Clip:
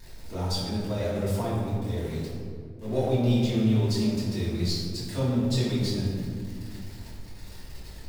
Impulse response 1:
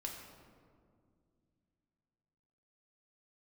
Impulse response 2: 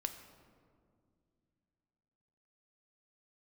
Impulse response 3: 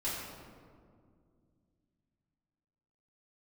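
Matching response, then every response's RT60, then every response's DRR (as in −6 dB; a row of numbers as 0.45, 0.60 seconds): 3; 2.2, 2.3, 2.2 seconds; −0.5, 7.0, −10.0 decibels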